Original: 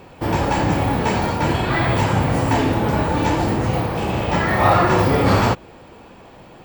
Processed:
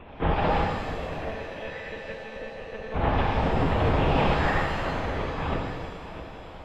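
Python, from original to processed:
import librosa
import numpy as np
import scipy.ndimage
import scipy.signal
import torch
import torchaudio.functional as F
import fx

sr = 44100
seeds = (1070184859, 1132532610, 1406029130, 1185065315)

y = fx.hum_notches(x, sr, base_hz=60, count=9)
y = fx.over_compress(y, sr, threshold_db=-21.0, ratio=-0.5)
y = fx.vowel_filter(y, sr, vowel='e', at=(0.67, 2.94))
y = y + 10.0 ** (-13.0 / 20.0) * np.pad(y, (int(649 * sr / 1000.0), 0))[:len(y)]
y = fx.lpc_monotone(y, sr, seeds[0], pitch_hz=220.0, order=10)
y = fx.rev_shimmer(y, sr, seeds[1], rt60_s=1.4, semitones=7, shimmer_db=-8, drr_db=0.0)
y = F.gain(torch.from_numpy(y), -5.0).numpy()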